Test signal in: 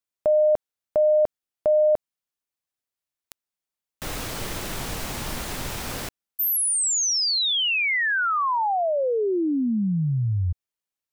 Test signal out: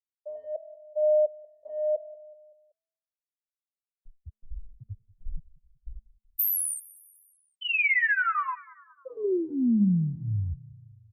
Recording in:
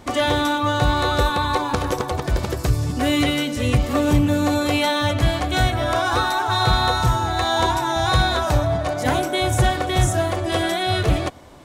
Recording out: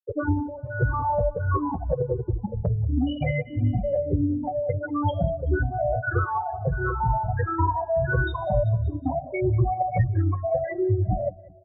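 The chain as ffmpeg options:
-filter_complex "[0:a]afftfilt=real='re*pow(10,20/40*sin(2*PI*(0.52*log(max(b,1)*sr/1024/100)/log(2)-(-1.5)*(pts-256)/sr)))':imag='im*pow(10,20/40*sin(2*PI*(0.52*log(max(b,1)*sr/1024/100)/log(2)-(-1.5)*(pts-256)/sr)))':win_size=1024:overlap=0.75,equalizer=f=125:t=o:w=1:g=5,equalizer=f=250:t=o:w=1:g=-4,equalizer=f=500:t=o:w=1:g=5,equalizer=f=1k:t=o:w=1:g=-4,equalizer=f=4k:t=o:w=1:g=-6,afftfilt=real='re*gte(hypot(re,im),0.562)':imag='im*gte(hypot(re,im),0.562)':win_size=1024:overlap=0.75,bandreject=f=216.4:t=h:w=4,bandreject=f=432.8:t=h:w=4,bandreject=f=649.2:t=h:w=4,bandreject=f=865.6:t=h:w=4,bandreject=f=1.082k:t=h:w=4,bandreject=f=1.2984k:t=h:w=4,bandreject=f=1.5148k:t=h:w=4,bandreject=f=1.7312k:t=h:w=4,bandreject=f=1.9476k:t=h:w=4,bandreject=f=2.164k:t=h:w=4,bandreject=f=2.3804k:t=h:w=4,bandreject=f=2.5968k:t=h:w=4,bandreject=f=2.8132k:t=h:w=4,bandreject=f=3.0296k:t=h:w=4,bandreject=f=3.246k:t=h:w=4,bandreject=f=3.4624k:t=h:w=4,bandreject=f=3.6788k:t=h:w=4,bandreject=f=3.8952k:t=h:w=4,bandreject=f=4.1116k:t=h:w=4,bandreject=f=4.328k:t=h:w=4,bandreject=f=4.5444k:t=h:w=4,acrossover=split=110|3400[a][b][c];[a]acompressor=threshold=-22dB:ratio=6[d];[b]acompressor=threshold=-22dB:ratio=6[e];[c]acompressor=threshold=-30dB:ratio=2[f];[d][e][f]amix=inputs=3:normalize=0,adynamicequalizer=threshold=0.00794:dfrequency=3900:dqfactor=1.1:tfrequency=3900:tqfactor=1.1:attack=5:release=100:ratio=0.417:range=1.5:mode=cutabove:tftype=bell,asplit=2[g][h];[h]aecho=0:1:189|378|567|756:0.0794|0.0421|0.0223|0.0118[i];[g][i]amix=inputs=2:normalize=0,asplit=2[j][k];[k]adelay=6.4,afreqshift=-0.81[l];[j][l]amix=inputs=2:normalize=1,volume=1dB"

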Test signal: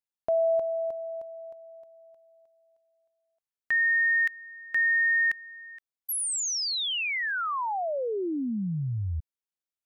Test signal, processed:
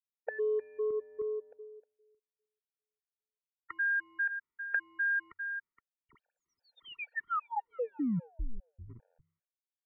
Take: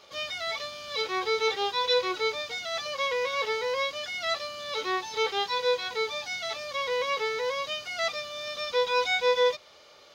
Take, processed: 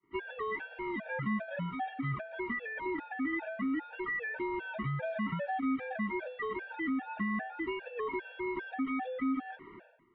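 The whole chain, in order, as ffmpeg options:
-af "bandreject=f=1.1k:w=9,bandreject=f=68:t=h:w=4,bandreject=f=136:t=h:w=4,agate=range=-35dB:threshold=-40dB:ratio=3:release=498:detection=peak,adynamicequalizer=threshold=0.00398:dfrequency=230:dqfactor=2.4:tfrequency=230:tqfactor=2.4:attack=5:release=100:ratio=0.45:range=2:mode=cutabove:tftype=bell,acontrast=35,aeval=exprs='0.355*(cos(1*acos(clip(val(0)/0.355,-1,1)))-cos(1*PI/2))+0.0126*(cos(3*acos(clip(val(0)/0.355,-1,1)))-cos(3*PI/2))+0.00794*(cos(6*acos(clip(val(0)/0.355,-1,1)))-cos(6*PI/2))+0.00891*(cos(7*acos(clip(val(0)/0.355,-1,1)))-cos(7*PI/2))+0.0126*(cos(8*acos(clip(val(0)/0.355,-1,1)))-cos(8*PI/2))':c=same,aresample=16000,asoftclip=type=hard:threshold=-22.5dB,aresample=44100,acompressor=threshold=-35dB:ratio=8:attack=14:release=101:knee=1:detection=peak,highpass=f=220:t=q:w=0.5412,highpass=f=220:t=q:w=1.307,lowpass=f=2.3k:t=q:w=0.5176,lowpass=f=2.3k:t=q:w=0.7071,lowpass=f=2.3k:t=q:w=1.932,afreqshift=-230,afftfilt=real='re*gt(sin(2*PI*2.5*pts/sr)*(1-2*mod(floor(b*sr/1024/460),2)),0)':imag='im*gt(sin(2*PI*2.5*pts/sr)*(1-2*mod(floor(b*sr/1024/460),2)),0)':win_size=1024:overlap=0.75,volume=5.5dB"

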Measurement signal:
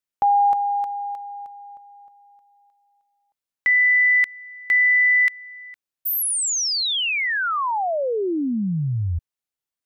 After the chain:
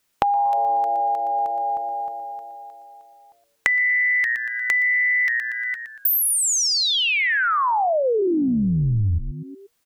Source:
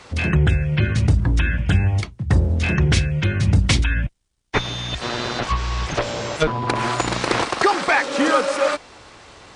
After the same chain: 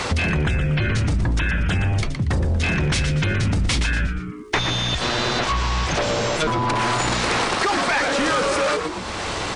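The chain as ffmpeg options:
-filter_complex "[0:a]asplit=5[a][b][c][d][e];[b]adelay=118,afreqshift=-120,volume=-11dB[f];[c]adelay=236,afreqshift=-240,volume=-20.1dB[g];[d]adelay=354,afreqshift=-360,volume=-29.2dB[h];[e]adelay=472,afreqshift=-480,volume=-38.4dB[i];[a][f][g][h][i]amix=inputs=5:normalize=0,apsyclip=20.5dB,acompressor=threshold=-17dB:ratio=12:attack=8:release=796:knee=6:detection=peak,volume=-1dB"

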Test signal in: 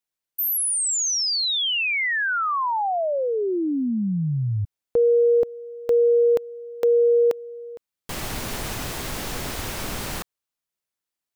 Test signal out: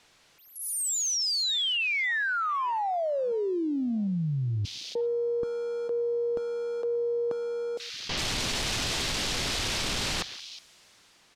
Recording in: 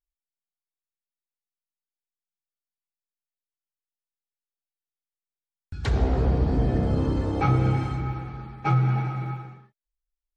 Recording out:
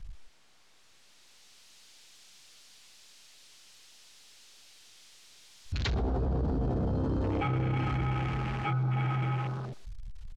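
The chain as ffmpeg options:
-filter_complex "[0:a]aeval=exprs='val(0)+0.5*0.0178*sgn(val(0))':c=same,acrossover=split=390|2800[a][b][c];[c]dynaudnorm=f=360:g=7:m=12.5dB[d];[a][b][d]amix=inputs=3:normalize=0,lowpass=5.3k,areverse,acompressor=threshold=-30dB:ratio=12:attack=2.8:release=30:knee=6:detection=peak,areverse,afwtdn=0.00794,asplit=2[e][f];[f]adelay=120,highpass=300,lowpass=3.4k,asoftclip=type=hard:threshold=-30dB,volume=-20dB[g];[e][g]amix=inputs=2:normalize=0,volume=3dB"

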